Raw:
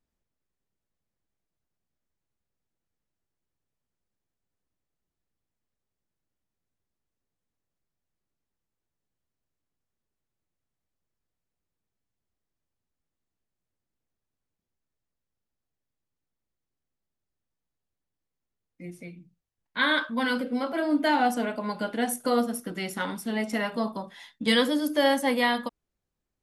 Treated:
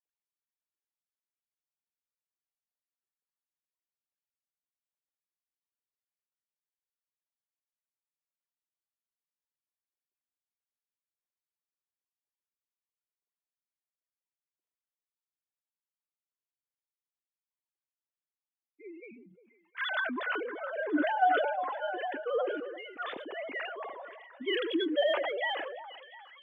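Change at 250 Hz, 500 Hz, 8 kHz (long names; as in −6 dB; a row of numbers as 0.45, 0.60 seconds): −10.5 dB, −3.5 dB, below −35 dB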